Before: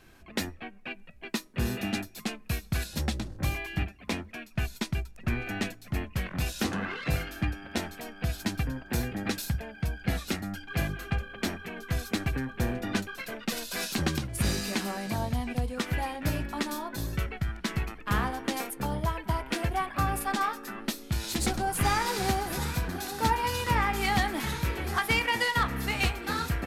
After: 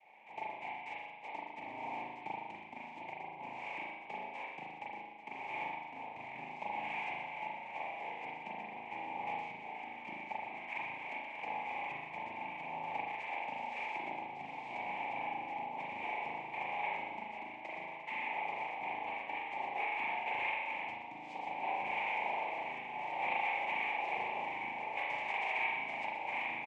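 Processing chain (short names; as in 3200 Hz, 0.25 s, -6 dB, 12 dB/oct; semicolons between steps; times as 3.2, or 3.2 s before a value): median filter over 15 samples; compressor 5:1, threshold -36 dBFS, peak gain reduction 13.5 dB; noise vocoder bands 4; double band-pass 1400 Hz, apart 1.4 oct; echo 0.124 s -10.5 dB; spring tank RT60 1.1 s, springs 37 ms, chirp 25 ms, DRR -4.5 dB; gain +5.5 dB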